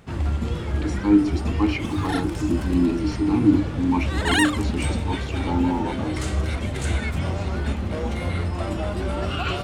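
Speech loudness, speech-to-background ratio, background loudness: −24.0 LKFS, 2.5 dB, −26.5 LKFS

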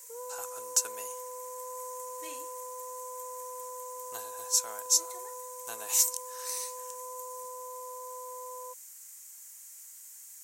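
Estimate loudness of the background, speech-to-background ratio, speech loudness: −43.5 LKFS, 11.0 dB, −32.5 LKFS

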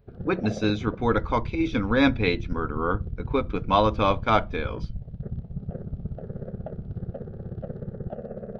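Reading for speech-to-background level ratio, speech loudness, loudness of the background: 11.0 dB, −25.0 LKFS, −36.0 LKFS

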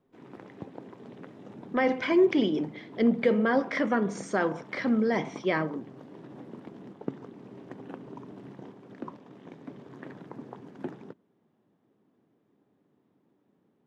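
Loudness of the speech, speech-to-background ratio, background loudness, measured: −27.0 LKFS, 18.5 dB, −45.5 LKFS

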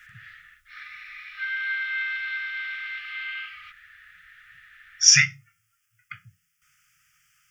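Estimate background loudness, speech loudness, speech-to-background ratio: −30.0 LKFS, −16.5 LKFS, 13.5 dB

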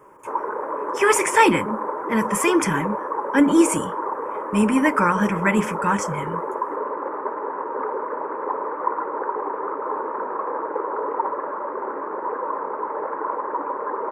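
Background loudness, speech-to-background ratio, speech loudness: −27.5 LKFS, 7.0 dB, −20.5 LKFS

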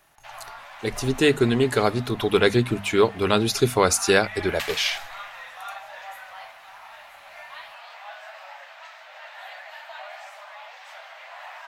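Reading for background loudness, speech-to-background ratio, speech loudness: −39.0 LKFS, 17.0 dB, −22.0 LKFS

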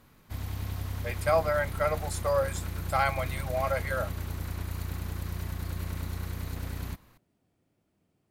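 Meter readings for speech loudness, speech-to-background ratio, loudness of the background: −30.0 LKFS, 6.5 dB, −36.5 LKFS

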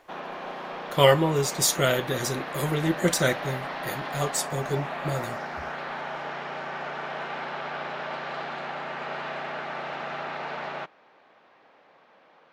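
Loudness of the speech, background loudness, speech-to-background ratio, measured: −25.5 LKFS, −34.0 LKFS, 8.5 dB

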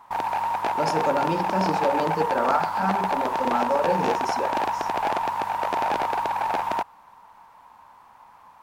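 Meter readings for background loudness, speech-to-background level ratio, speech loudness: −25.5 LKFS, −2.0 dB, −27.5 LKFS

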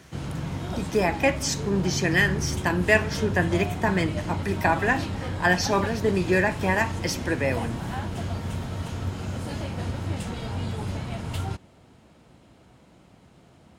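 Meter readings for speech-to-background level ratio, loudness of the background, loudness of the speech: 6.5 dB, −31.5 LKFS, −25.0 LKFS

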